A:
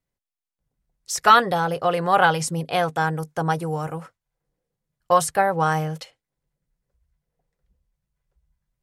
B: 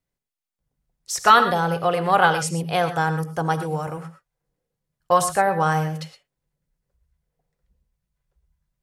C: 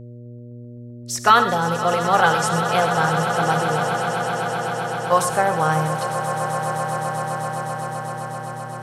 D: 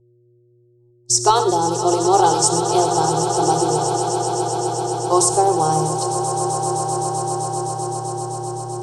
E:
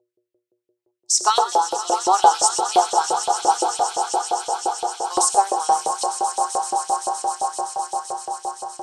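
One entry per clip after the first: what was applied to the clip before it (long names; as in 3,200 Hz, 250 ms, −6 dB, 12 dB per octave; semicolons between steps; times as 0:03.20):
reverb whose tail is shaped and stops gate 140 ms rising, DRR 9.5 dB
hum with harmonics 120 Hz, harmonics 5, −38 dBFS −7 dB per octave; echo that builds up and dies away 129 ms, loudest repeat 8, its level −13 dB
noise gate −33 dBFS, range −25 dB; drawn EQ curve 140 Hz 0 dB, 220 Hz −28 dB, 360 Hz +12 dB, 540 Hz −11 dB, 840 Hz 0 dB, 1,800 Hz −26 dB, 5,400 Hz +5 dB, 8,500 Hz +7 dB, 14,000 Hz −21 dB; level +5.5 dB
auto-filter high-pass saw up 5.8 Hz 530–3,100 Hz; level −2 dB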